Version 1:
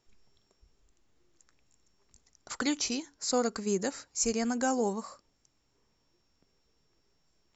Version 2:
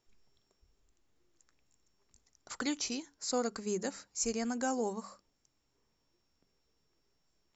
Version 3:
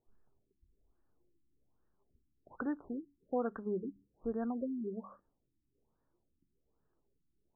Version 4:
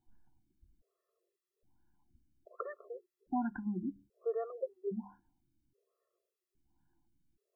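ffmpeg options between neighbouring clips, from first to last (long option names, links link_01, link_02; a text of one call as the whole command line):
ffmpeg -i in.wav -af "bandreject=frequency=50:width_type=h:width=6,bandreject=frequency=100:width_type=h:width=6,bandreject=frequency=150:width_type=h:width=6,bandreject=frequency=200:width_type=h:width=6,volume=-4.5dB" out.wav
ffmpeg -i in.wav -af "afftfilt=real='re*lt(b*sr/1024,360*pow(1900/360,0.5+0.5*sin(2*PI*1.2*pts/sr)))':imag='im*lt(b*sr/1024,360*pow(1900/360,0.5+0.5*sin(2*PI*1.2*pts/sr)))':win_size=1024:overlap=0.75,volume=-1dB" out.wav
ffmpeg -i in.wav -af "afftfilt=real='re*gt(sin(2*PI*0.61*pts/sr)*(1-2*mod(floor(b*sr/1024/350),2)),0)':imag='im*gt(sin(2*PI*0.61*pts/sr)*(1-2*mod(floor(b*sr/1024/350),2)),0)':win_size=1024:overlap=0.75,volume=4.5dB" out.wav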